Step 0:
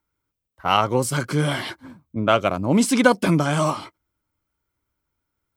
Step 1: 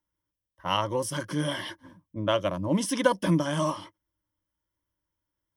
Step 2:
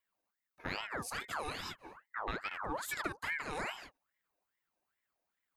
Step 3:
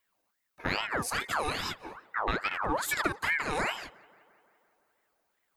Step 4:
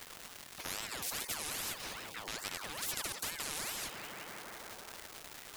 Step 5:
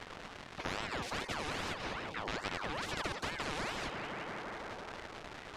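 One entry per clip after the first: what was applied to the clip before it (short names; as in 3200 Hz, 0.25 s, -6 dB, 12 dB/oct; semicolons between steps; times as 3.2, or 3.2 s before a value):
ripple EQ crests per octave 1.2, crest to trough 11 dB; gain -8.5 dB
compressor 4:1, threshold -36 dBFS, peak gain reduction 17 dB; ring modulator with a swept carrier 1300 Hz, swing 55%, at 2.4 Hz; gain +1 dB
tape echo 0.172 s, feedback 72%, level -23.5 dB, low-pass 3000 Hz; gain +8.5 dB
crackle 500/s -54 dBFS; spectral compressor 10:1; gain -3 dB
tape spacing loss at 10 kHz 27 dB; gain +9 dB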